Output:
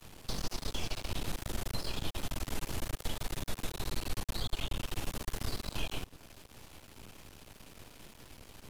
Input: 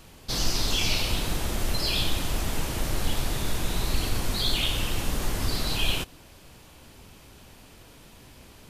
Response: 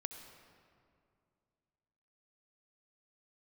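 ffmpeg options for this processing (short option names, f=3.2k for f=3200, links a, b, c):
-filter_complex "[0:a]asettb=1/sr,asplit=3[a][b][c];[a]atrim=end=3.854[d];[b]atrim=start=3.85:end=4.8,asetpts=PTS-STARTPTS,afade=t=in:d=0.004:c=qsin,afade=t=out:st=0.946:d=0.004:c=qsin,asubboost=boost=7:cutoff=210[e];[c]atrim=start=4.796[f];[d][e]acrossfade=d=0.004:c1=hsin:c2=qsin[g];[g][f]acrossfade=d=0.004:c1=qsin:c2=hsin,aeval=exprs='max(val(0),0)':c=same,acrossover=split=280|1400[h][i][j];[h]acompressor=threshold=-33dB:ratio=4[k];[i]acompressor=threshold=-46dB:ratio=4[l];[j]acompressor=threshold=-44dB:ratio=4[m];[k][l][m]amix=inputs=3:normalize=0,volume=1dB"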